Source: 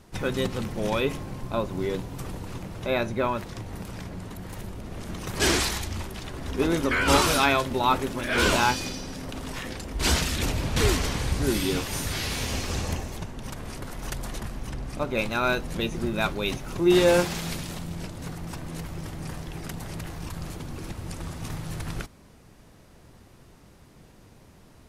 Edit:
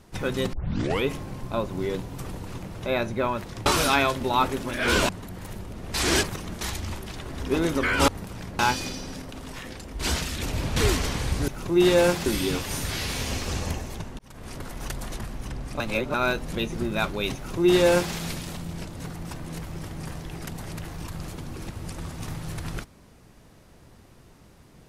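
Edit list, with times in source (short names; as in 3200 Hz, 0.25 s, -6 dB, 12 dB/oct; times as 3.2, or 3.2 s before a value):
0.53 tape start 0.51 s
3.66–4.17 swap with 7.16–8.59
5.02–5.69 reverse
9.22–10.53 gain -3.5 dB
13.41–13.77 fade in
15.02–15.36 reverse
16.58–17.36 copy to 11.48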